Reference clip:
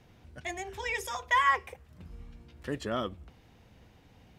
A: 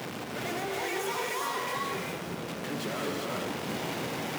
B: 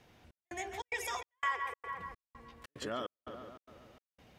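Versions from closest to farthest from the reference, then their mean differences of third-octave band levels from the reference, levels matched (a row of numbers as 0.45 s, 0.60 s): B, A; 9.0 dB, 19.0 dB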